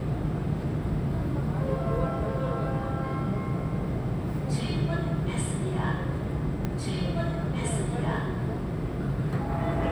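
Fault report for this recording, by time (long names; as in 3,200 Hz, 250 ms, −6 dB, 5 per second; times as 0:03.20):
0:06.65: click −17 dBFS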